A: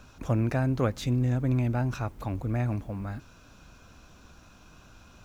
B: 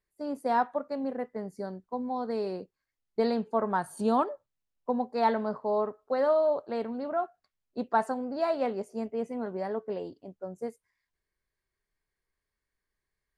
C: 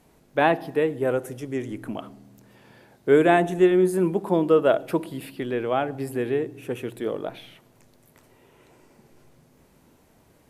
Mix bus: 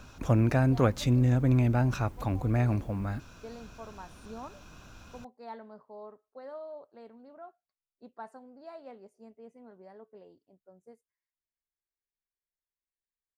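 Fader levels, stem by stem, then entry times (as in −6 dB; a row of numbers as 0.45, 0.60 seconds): +2.0 dB, −18.0 dB, muted; 0.00 s, 0.25 s, muted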